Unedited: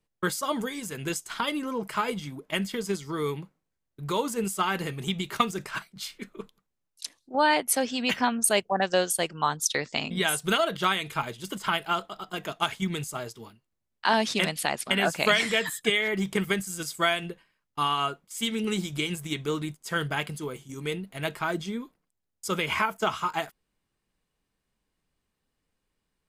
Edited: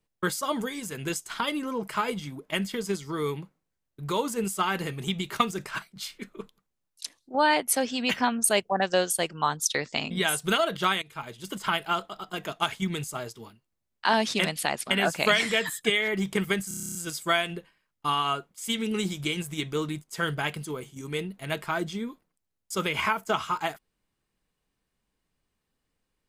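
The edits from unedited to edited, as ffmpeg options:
-filter_complex "[0:a]asplit=11[a][b][c][d][e][f][g][h][i][j][k];[a]atrim=end=11.02,asetpts=PTS-STARTPTS,afade=t=out:st=11.016:d=0.004:c=hsin:silence=0.133352[l];[b]atrim=start=11.02:end=16.712,asetpts=PTS-STARTPTS,afade=t=in:d=0.55:silence=0.133352[m];[c]atrim=start=16.678:end=16.712[n];[d]atrim=start=16.678:end=16.712[o];[e]atrim=start=16.678:end=16.712[p];[f]atrim=start=16.678:end=16.712[q];[g]atrim=start=16.678:end=16.712[r];[h]atrim=start=16.678:end=16.712[s];[i]atrim=start=16.678:end=16.712[t];[j]atrim=start=16.678:end=16.712[u];[k]atrim=start=16.678[v];[l][m]concat=n=2:v=0:a=1[w];[w][n]acrossfade=d=0.004:c1=hsin:c2=hsin[x];[x][o]acrossfade=d=0.004:c1=hsin:c2=hsin[y];[y][p]acrossfade=d=0.004:c1=hsin:c2=hsin[z];[z][q]acrossfade=d=0.004:c1=hsin:c2=hsin[aa];[aa][r]acrossfade=d=0.004:c1=hsin:c2=hsin[ab];[ab][s]acrossfade=d=0.004:c1=hsin:c2=hsin[ac];[ac][t]acrossfade=d=0.004:c1=hsin:c2=hsin[ad];[ad][u]acrossfade=d=0.004:c1=hsin:c2=hsin[ae];[ae][v]acrossfade=d=0.004:c1=hsin:c2=hsin"

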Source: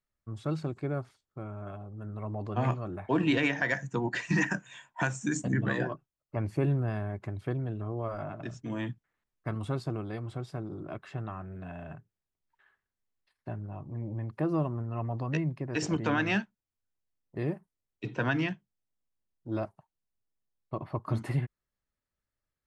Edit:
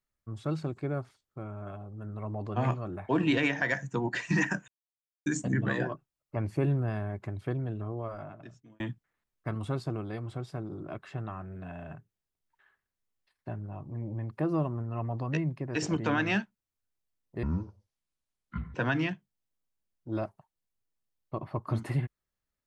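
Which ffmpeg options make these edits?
-filter_complex "[0:a]asplit=6[a][b][c][d][e][f];[a]atrim=end=4.68,asetpts=PTS-STARTPTS,afade=t=out:st=4.676:d=0.004:c=hsin[g];[b]atrim=start=4.68:end=5.26,asetpts=PTS-STARTPTS,volume=0[h];[c]atrim=start=5.26:end=8.8,asetpts=PTS-STARTPTS,afade=t=in:d=0.004:c=hsin,afade=t=out:st=2.54:d=1[i];[d]atrim=start=8.8:end=17.434,asetpts=PTS-STARTPTS,afade=t=in:d=0.004:c=hsin[j];[e]atrim=start=17.43:end=18.14,asetpts=PTS-STARTPTS,asetrate=23814,aresample=44100,atrim=end_sample=57983,asetpts=PTS-STARTPTS[k];[f]atrim=start=18.136[l];[g][h][i][j]concat=n=4:v=0:a=1[m];[m][k]acrossfade=d=0.004:c1=hsin:c2=hsin[n];[n][l]acrossfade=d=0.004:c1=hsin:c2=hsin"

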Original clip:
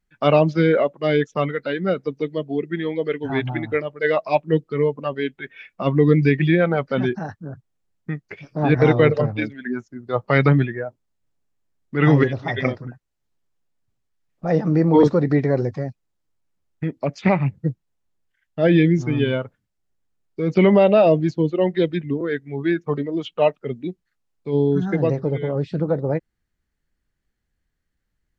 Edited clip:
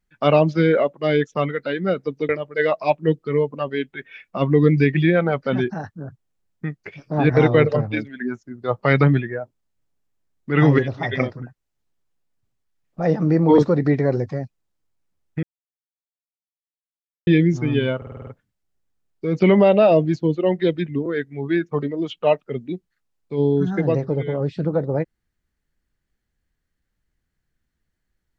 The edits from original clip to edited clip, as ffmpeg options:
-filter_complex "[0:a]asplit=10[a][b][c][d][e][f][g][h][i][j];[a]atrim=end=2.292[k];[b]atrim=start=3.738:end=16.88,asetpts=PTS-STARTPTS,afade=t=out:st=13.138:d=0.004:c=hsin[l];[c]atrim=start=16.88:end=18.72,asetpts=PTS-STARTPTS,volume=0[m];[d]atrim=start=18.72:end=19.472,asetpts=PTS-STARTPTS,afade=t=in:d=0.004:c=hsin[n];[e]atrim=start=19.418:end=19.472[o];[f]atrim=start=19.418:end=19.472[p];[g]atrim=start=19.418:end=19.472[q];[h]atrim=start=19.418:end=19.472[r];[i]atrim=start=19.418:end=19.472[s];[j]atrim=start=19.418[t];[l][m][n]concat=n=3:v=0:a=1[u];[k][u]acrossfade=d=0.004:c1=hsin:c2=hsin[v];[v][o]acrossfade=d=0.004:c1=hsin:c2=hsin[w];[w][p]acrossfade=d=0.004:c1=hsin:c2=hsin[x];[x][q]acrossfade=d=0.004:c1=hsin:c2=hsin[y];[y][r]acrossfade=d=0.004:c1=hsin:c2=hsin[z];[z][s]acrossfade=d=0.004:c1=hsin:c2=hsin[aa];[aa][t]acrossfade=d=0.004:c1=hsin:c2=hsin"

